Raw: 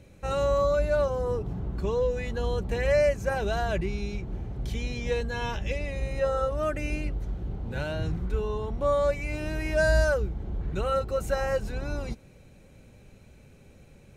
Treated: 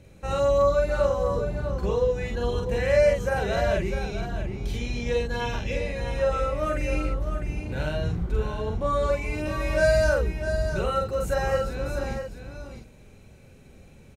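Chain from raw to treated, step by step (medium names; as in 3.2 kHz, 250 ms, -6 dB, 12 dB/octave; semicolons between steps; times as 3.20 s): doubling 46 ms -2 dB; delay 652 ms -8.5 dB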